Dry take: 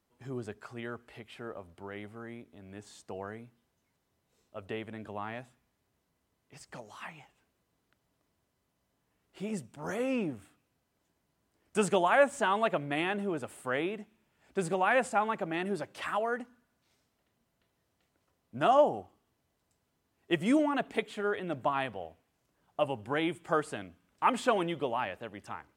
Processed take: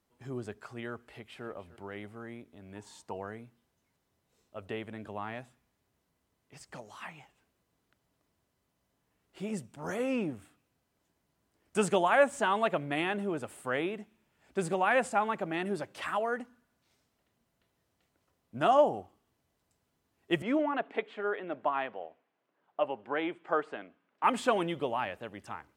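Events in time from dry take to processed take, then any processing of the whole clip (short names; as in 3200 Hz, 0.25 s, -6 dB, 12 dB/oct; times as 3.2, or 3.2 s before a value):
1.04–1.46 echo throw 0.3 s, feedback 35%, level -16.5 dB
2.75–3.17 bell 930 Hz +14 dB 0.21 oct
20.42–24.24 BPF 320–2500 Hz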